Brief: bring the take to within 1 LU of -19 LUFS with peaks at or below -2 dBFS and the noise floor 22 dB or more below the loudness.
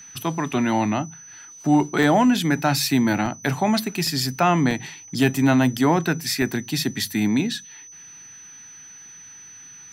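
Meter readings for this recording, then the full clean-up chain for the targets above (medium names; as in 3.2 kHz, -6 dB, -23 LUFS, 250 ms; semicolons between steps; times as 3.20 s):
dropouts 6; longest dropout 3.1 ms; steady tone 6 kHz; tone level -41 dBFS; loudness -21.5 LUFS; peak level -6.5 dBFS; loudness target -19.0 LUFS
-> interpolate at 0.53/2.03/3.26/4.07/4.71/6.42 s, 3.1 ms; band-stop 6 kHz, Q 30; trim +2.5 dB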